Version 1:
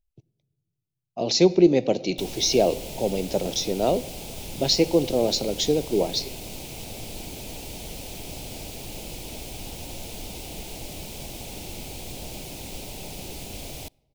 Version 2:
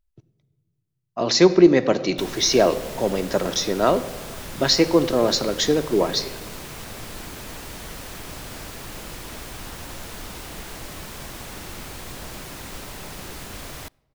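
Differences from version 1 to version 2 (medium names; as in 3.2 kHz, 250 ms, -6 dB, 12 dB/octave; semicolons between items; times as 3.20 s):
speech: send +8.5 dB; master: add high-order bell 1.4 kHz +16 dB 1.1 oct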